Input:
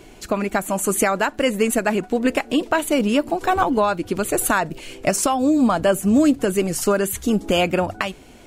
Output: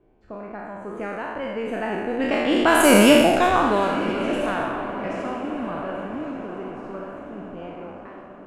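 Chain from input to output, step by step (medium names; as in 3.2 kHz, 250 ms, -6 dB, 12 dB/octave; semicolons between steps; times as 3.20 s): spectral sustain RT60 1.64 s; Doppler pass-by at 3.05 s, 9 m/s, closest 2.3 m; wow and flutter 26 cents; echo that smears into a reverb 1197 ms, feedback 53%, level -11.5 dB; level-controlled noise filter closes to 1.1 kHz, open at -14.5 dBFS; trim +3 dB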